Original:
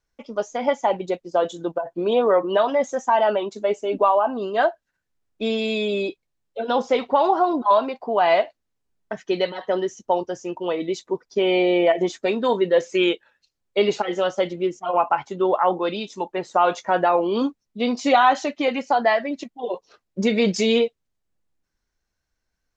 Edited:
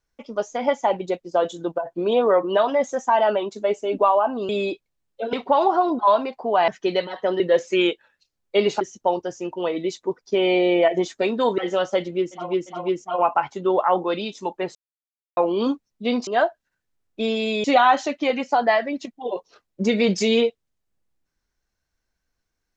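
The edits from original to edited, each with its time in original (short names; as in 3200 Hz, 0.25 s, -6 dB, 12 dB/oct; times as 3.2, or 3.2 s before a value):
4.49–5.86 move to 18.02
6.7–6.96 cut
8.31–9.13 cut
12.62–14.03 move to 9.85
14.53–14.88 loop, 3 plays, crossfade 0.24 s
16.5–17.12 mute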